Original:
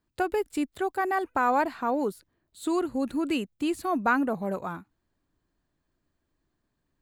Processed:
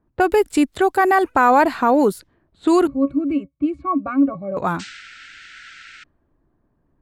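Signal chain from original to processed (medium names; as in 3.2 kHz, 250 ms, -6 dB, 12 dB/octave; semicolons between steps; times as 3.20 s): 2.87–4.57 s: pitch-class resonator C#, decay 0.1 s; in parallel at +1 dB: peak limiter -22 dBFS, peak gain reduction 8.5 dB; 4.79–6.04 s: on the sum: painted sound noise 1.3–8.6 kHz -39 dBFS; level-controlled noise filter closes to 1 kHz, open at -22.5 dBFS; trim +6.5 dB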